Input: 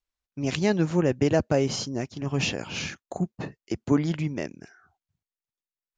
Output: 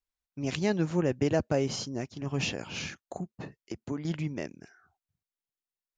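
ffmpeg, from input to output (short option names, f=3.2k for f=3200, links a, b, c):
-filter_complex "[0:a]asettb=1/sr,asplit=3[a][b][c];[a]atrim=end=3.194[d];[b]atrim=start=3.19:end=4.05,asetpts=PTS-STARTPTS,afade=t=in:d=0.004:c=qsin,afade=t=out:st=0.856:d=0.004:c=qsin,acompressor=threshold=-33dB:ratio=2[e];[c]atrim=start=4.046[f];[d][e]acrossfade=d=0.004:c1=hsin:c2=qsin[g];[g][f]acrossfade=d=0.004:c1=qsin:c2=hsin,volume=-4.5dB"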